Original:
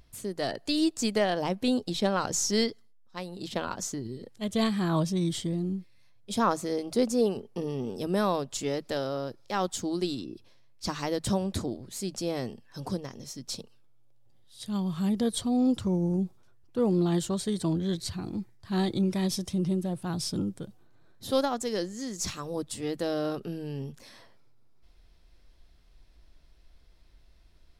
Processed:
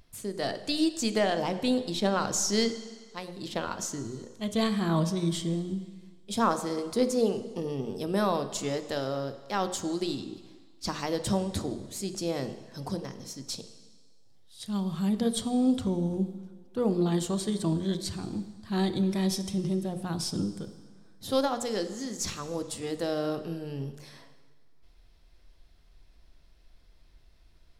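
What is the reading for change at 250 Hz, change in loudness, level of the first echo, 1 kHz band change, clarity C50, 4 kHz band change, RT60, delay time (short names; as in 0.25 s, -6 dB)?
-0.5 dB, 0.0 dB, none, +0.5 dB, 12.0 dB, +0.5 dB, 1.6 s, none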